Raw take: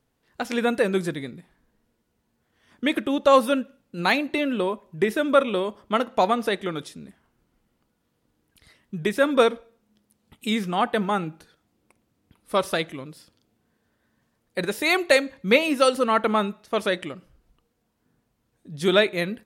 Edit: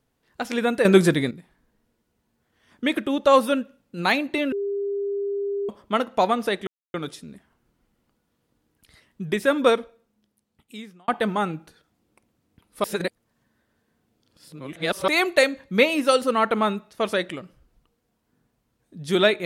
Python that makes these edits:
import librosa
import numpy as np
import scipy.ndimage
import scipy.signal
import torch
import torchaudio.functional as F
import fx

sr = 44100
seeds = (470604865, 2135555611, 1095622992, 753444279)

y = fx.edit(x, sr, fx.clip_gain(start_s=0.85, length_s=0.46, db=9.5),
    fx.bleep(start_s=4.52, length_s=1.17, hz=401.0, db=-23.5),
    fx.insert_silence(at_s=6.67, length_s=0.27),
    fx.fade_out_span(start_s=9.38, length_s=1.43),
    fx.reverse_span(start_s=12.57, length_s=2.24), tone=tone)